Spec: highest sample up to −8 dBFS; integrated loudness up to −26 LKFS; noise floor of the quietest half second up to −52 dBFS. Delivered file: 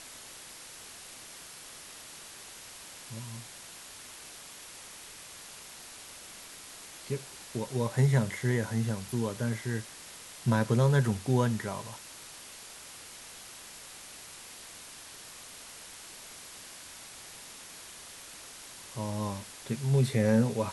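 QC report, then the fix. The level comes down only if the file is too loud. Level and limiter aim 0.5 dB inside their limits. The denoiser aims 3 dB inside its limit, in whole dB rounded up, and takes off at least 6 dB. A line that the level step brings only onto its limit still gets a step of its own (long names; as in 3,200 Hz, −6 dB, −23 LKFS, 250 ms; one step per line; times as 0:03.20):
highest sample −12.5 dBFS: in spec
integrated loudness −30.5 LKFS: in spec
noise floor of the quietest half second −48 dBFS: out of spec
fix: broadband denoise 7 dB, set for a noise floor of −48 dBFS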